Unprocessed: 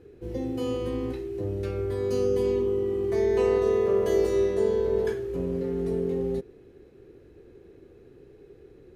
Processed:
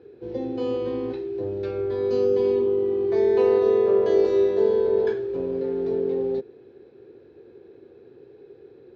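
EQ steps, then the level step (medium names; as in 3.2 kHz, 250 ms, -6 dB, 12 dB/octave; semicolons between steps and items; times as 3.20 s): cabinet simulation 180–4100 Hz, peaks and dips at 180 Hz -10 dB, 290 Hz -5 dB, 630 Hz -3 dB, 1.2 kHz -6 dB, 2 kHz -8 dB, 2.9 kHz -7 dB; +5.5 dB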